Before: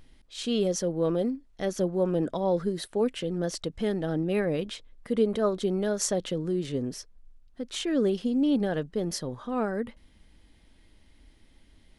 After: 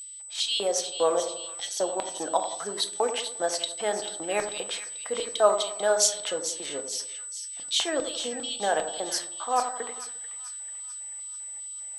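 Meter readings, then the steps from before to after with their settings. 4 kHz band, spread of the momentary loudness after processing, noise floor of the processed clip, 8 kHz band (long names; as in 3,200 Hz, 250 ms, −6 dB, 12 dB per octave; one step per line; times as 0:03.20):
+9.5 dB, 12 LU, −39 dBFS, +11.0 dB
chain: auto-filter high-pass square 2.5 Hz 770–3,600 Hz
steady tone 8,000 Hz −43 dBFS
echo with a time of its own for lows and highs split 1,500 Hz, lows 88 ms, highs 440 ms, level −10 dB
rectangular room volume 270 cubic metres, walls furnished, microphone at 0.66 metres
level +4.5 dB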